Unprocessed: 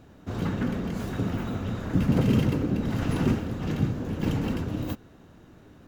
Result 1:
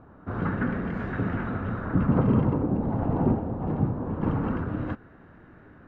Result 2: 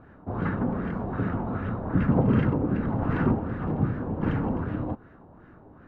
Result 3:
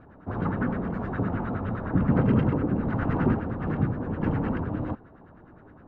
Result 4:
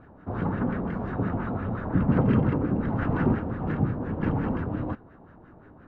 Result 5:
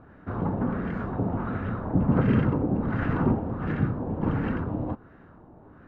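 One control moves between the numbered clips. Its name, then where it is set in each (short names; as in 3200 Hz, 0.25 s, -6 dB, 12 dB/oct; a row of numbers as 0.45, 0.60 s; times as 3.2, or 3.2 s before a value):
LFO low-pass, rate: 0.23, 2.6, 9.7, 5.7, 1.4 Hz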